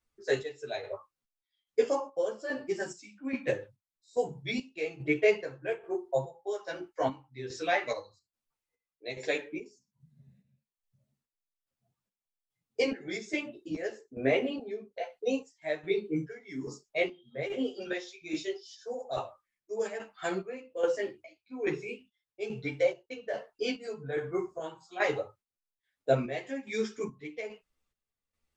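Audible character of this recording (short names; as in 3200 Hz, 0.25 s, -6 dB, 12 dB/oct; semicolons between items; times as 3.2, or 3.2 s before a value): chopped level 1.2 Hz, depth 65%, duty 50%; a shimmering, thickened sound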